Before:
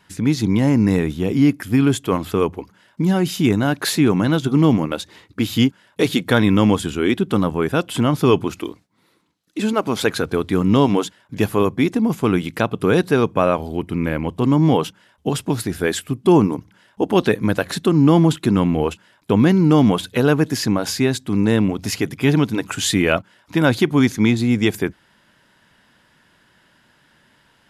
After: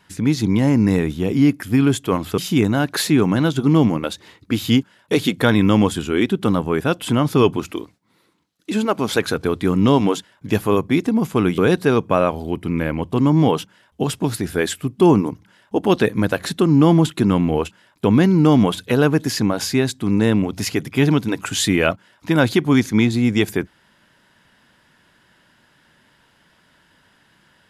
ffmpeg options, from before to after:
ffmpeg -i in.wav -filter_complex "[0:a]asplit=3[link_01][link_02][link_03];[link_01]atrim=end=2.382[link_04];[link_02]atrim=start=3.258:end=12.462[link_05];[link_03]atrim=start=12.838[link_06];[link_04][link_05]acrossfade=duration=0.004:curve1=hsin:curve2=hsin[link_07];[link_07][link_06]acrossfade=duration=0.004:curve1=hsin:curve2=hsin" out.wav

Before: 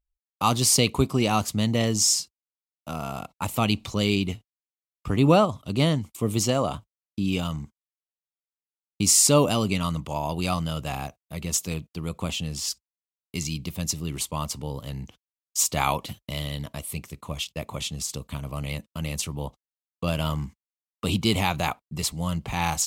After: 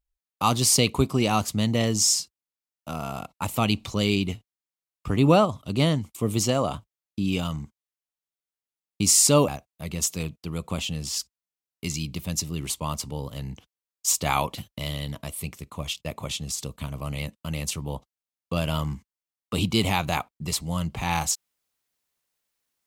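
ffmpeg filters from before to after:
ffmpeg -i in.wav -filter_complex "[0:a]asplit=2[link_01][link_02];[link_01]atrim=end=9.482[link_03];[link_02]atrim=start=10.988[link_04];[link_03][link_04]acrossfade=duration=0.004:curve1=hsin:curve2=hsin" out.wav

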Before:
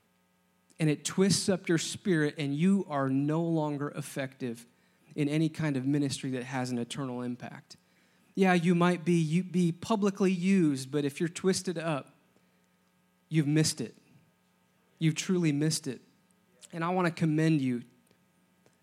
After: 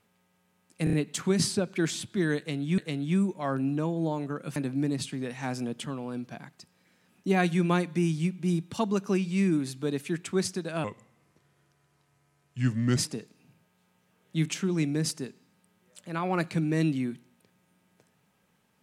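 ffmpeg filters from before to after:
ffmpeg -i in.wav -filter_complex "[0:a]asplit=8[link_01][link_02][link_03][link_04][link_05][link_06][link_07][link_08];[link_01]atrim=end=0.872[link_09];[link_02]atrim=start=0.838:end=0.872[link_10];[link_03]atrim=start=0.838:end=0.872[link_11];[link_04]atrim=start=0.838:end=2.692[link_12];[link_05]atrim=start=2.288:end=4.072[link_13];[link_06]atrim=start=5.668:end=11.954[link_14];[link_07]atrim=start=11.95:end=13.63,asetpts=PTS-STARTPTS,asetrate=34839,aresample=44100,atrim=end_sample=93782,asetpts=PTS-STARTPTS[link_15];[link_08]atrim=start=13.626[link_16];[link_09][link_10]acrossfade=duration=0.004:curve1=hsin:curve2=hsin[link_17];[link_17][link_11]acrossfade=duration=0.004:curve1=hsin:curve2=hsin[link_18];[link_18][link_12]acrossfade=duration=0.004:curve1=hsin:curve2=hsin[link_19];[link_19][link_13]acrossfade=duration=0.004:curve1=hsin:curve2=hsin[link_20];[link_20][link_14]acrossfade=duration=0.004:curve1=hsin:curve2=hsin[link_21];[link_21][link_15]acrossfade=duration=0.004:curve1=hsin:curve2=hsin[link_22];[link_22][link_16]acrossfade=duration=0.004:curve1=hsin:curve2=hsin" out.wav

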